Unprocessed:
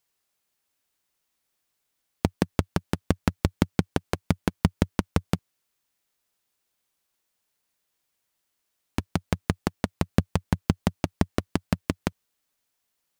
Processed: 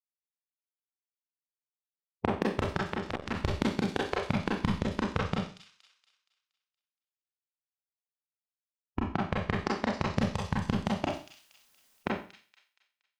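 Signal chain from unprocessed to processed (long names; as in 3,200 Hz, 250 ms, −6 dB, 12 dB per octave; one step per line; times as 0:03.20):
spectral dynamics exaggerated over time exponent 2
low-pass that shuts in the quiet parts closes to 900 Hz, open at −24.5 dBFS
0:09.64–0:10.35: parametric band 5,400 Hz +14.5 dB 0.6 octaves
downward compressor 12 to 1, threshold −32 dBFS, peak gain reduction 17.5 dB
0:04.71–0:05.34: high-frequency loss of the air 59 metres
0:11.08–0:11.98: fill with room tone
delay with a high-pass on its return 235 ms, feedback 42%, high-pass 4,200 Hz, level −5.5 dB
four-comb reverb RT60 0.39 s, combs from 29 ms, DRR −3.5 dB
0:02.83–0:03.35: saturating transformer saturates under 1,600 Hz
level +5.5 dB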